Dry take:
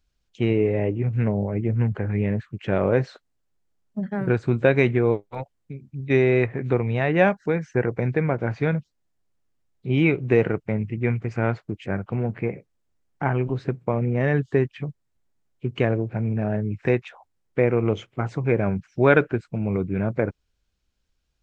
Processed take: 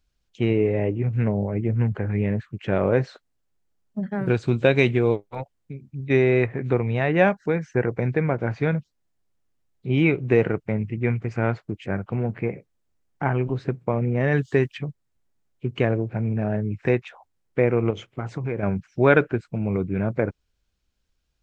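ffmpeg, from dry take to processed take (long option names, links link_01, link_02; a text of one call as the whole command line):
ffmpeg -i in.wav -filter_complex "[0:a]asettb=1/sr,asplit=3[link_01][link_02][link_03];[link_01]atrim=end=4.264[link_04];[link_02]atrim=start=4.26:end=5.16,asetpts=PTS-STARTPTS,afade=type=in:duration=0.004:curve=qsin,afade=type=out:start_time=0.896:duration=0.004:curve=qsin,highshelf=frequency=2400:width_type=q:width=1.5:gain=6[link_05];[link_03]atrim=start=5.156[link_06];[link_04][link_05]acrossfade=duration=0.004:curve1=hsin:curve2=qsin[link_07];[link_07][link_06]acrossfade=duration=0.004:curve1=qsin:curve2=hsin,asplit=3[link_08][link_09][link_10];[link_08]afade=type=out:start_time=14.31:duration=0.02[link_11];[link_09]highshelf=frequency=2400:gain=11,afade=type=in:start_time=14.31:duration=0.02,afade=type=out:start_time=14.77:duration=0.02[link_12];[link_10]afade=type=in:start_time=14.77:duration=0.02[link_13];[link_11][link_12][link_13]amix=inputs=3:normalize=0,asettb=1/sr,asplit=3[link_14][link_15][link_16];[link_14]atrim=end=17.904[link_17];[link_15]atrim=start=17.9:end=18.63,asetpts=PTS-STARTPTS,afade=type=in:duration=0.004:curve=qsin,afade=type=out:start_time=0.726:duration=0.004:curve=qsin,acompressor=threshold=-24dB:ratio=3:attack=3.2:release=140:knee=1:detection=peak[link_18];[link_16]atrim=start=18.626[link_19];[link_17][link_18]acrossfade=duration=0.004:curve1=hsin:curve2=qsin[link_20];[link_20][link_19]acrossfade=duration=0.004:curve1=qsin:curve2=hsin" out.wav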